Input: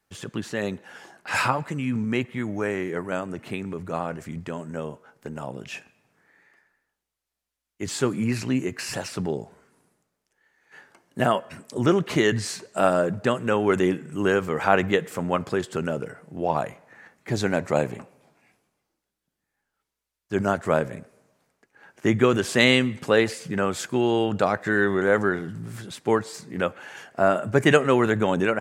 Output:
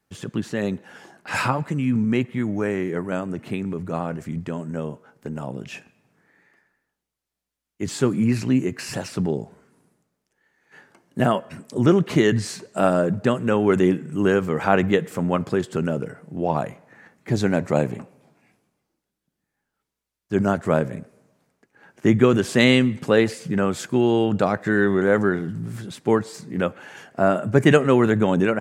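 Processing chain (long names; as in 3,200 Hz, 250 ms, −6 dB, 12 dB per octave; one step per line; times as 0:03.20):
parametric band 180 Hz +7 dB 2.4 octaves
level −1 dB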